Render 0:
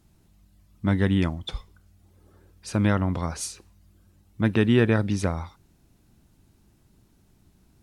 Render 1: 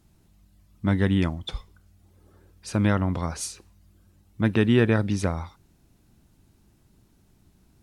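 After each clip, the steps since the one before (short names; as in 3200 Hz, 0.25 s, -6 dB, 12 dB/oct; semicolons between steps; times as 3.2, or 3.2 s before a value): nothing audible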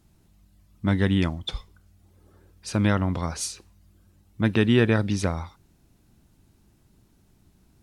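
dynamic EQ 4200 Hz, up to +4 dB, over -45 dBFS, Q 0.82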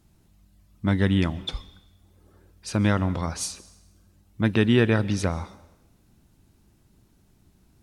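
reverb RT60 1.0 s, pre-delay 0.119 s, DRR 19 dB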